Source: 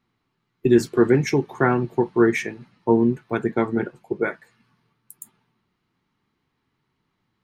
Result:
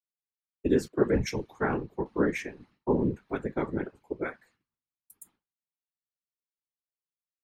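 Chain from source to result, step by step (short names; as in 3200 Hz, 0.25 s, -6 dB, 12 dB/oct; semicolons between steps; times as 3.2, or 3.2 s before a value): expander -49 dBFS; whisperiser; 0.88–2.06 three-band expander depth 70%; gain -9 dB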